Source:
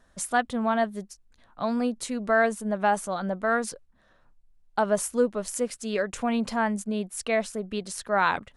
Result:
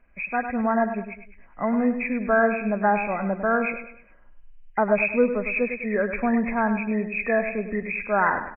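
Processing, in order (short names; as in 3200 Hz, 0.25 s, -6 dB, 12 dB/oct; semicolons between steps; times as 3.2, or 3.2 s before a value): nonlinear frequency compression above 1600 Hz 4:1; bell 110 Hz -14.5 dB 0.85 oct; feedback echo 0.102 s, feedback 39%, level -9.5 dB; AGC gain up to 6 dB; low shelf 230 Hz +9.5 dB; gain -4.5 dB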